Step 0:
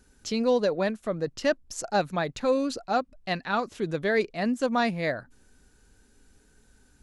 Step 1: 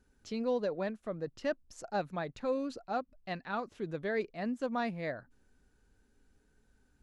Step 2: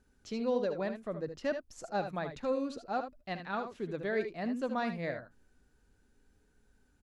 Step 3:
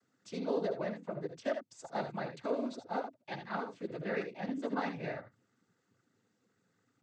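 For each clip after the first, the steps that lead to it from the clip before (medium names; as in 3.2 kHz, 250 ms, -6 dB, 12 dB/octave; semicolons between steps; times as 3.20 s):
treble shelf 3.9 kHz -10 dB; trim -8.5 dB
wow and flutter 19 cents; early reflections 65 ms -15 dB, 77 ms -9.5 dB
noise-vocoded speech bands 16; trim -2 dB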